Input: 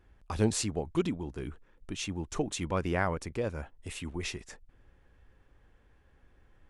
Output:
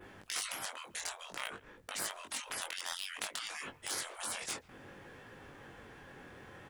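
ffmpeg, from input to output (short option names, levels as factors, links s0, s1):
-filter_complex "[0:a]adynamicequalizer=threshold=0.002:dfrequency=5500:dqfactor=1.8:tfrequency=5500:tqfactor=1.8:attack=5:release=100:ratio=0.375:range=2:mode=cutabove:tftype=bell,acontrast=63,asettb=1/sr,asplit=3[s0][s1][s2];[s0]atrim=end=1.294[s3];[s1]atrim=start=1.29:end=2.06,asetpts=PTS-STARTPTS,afade=t=in:d=0.004:c=qsin,afade=t=out:st=0.766:d=0.004:c=qsin,aeval=exprs='0.224*(cos(1*acos(clip(val(0)/0.224,-1,1)))-cos(1*PI/2))+0.0282*(cos(3*acos(clip(val(0)/0.224,-1,1)))-cos(3*PI/2))+0.0178*(cos(4*acos(clip(val(0)/0.224,-1,1)))-cos(4*PI/2))':c=same[s4];[s2]atrim=start=2.056[s5];[s3][s4]acrossfade=d=0.004:c1=hsin:c2=qsin[s6];[s6][s5]acrossfade=d=0.004:c1=qsin:c2=hsin,afftfilt=real='re*lt(hypot(re,im),0.0112)':imag='im*lt(hypot(re,im),0.0112)':win_size=1024:overlap=0.75,asplit=2[s7][s8];[s8]adelay=140,highpass=300,lowpass=3400,asoftclip=type=hard:threshold=0.224,volume=0.0708[s9];[s7][s9]amix=inputs=2:normalize=0,flanger=delay=19.5:depth=3.9:speed=0.56,asplit=2[s10][s11];[s11]acrusher=bits=6:mix=0:aa=0.000001,volume=0.422[s12];[s10][s12]amix=inputs=2:normalize=0,lowshelf=f=190:g=-5,volume=4.73"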